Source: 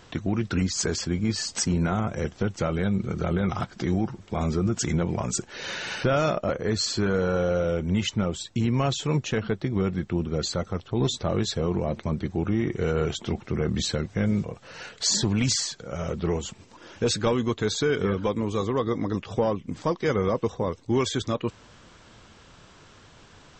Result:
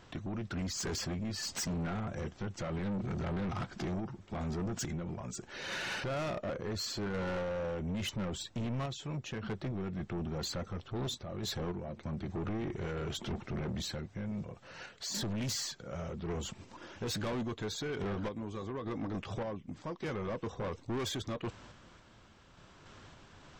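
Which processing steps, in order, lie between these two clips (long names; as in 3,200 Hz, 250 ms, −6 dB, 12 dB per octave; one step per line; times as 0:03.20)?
high-shelf EQ 3,800 Hz −5.5 dB
notch filter 460 Hz, Q 12
brickwall limiter −18 dBFS, peak gain reduction 5.5 dB
sample-and-hold tremolo 3.5 Hz, depth 70%
soft clipping −32.5 dBFS, distortion −7 dB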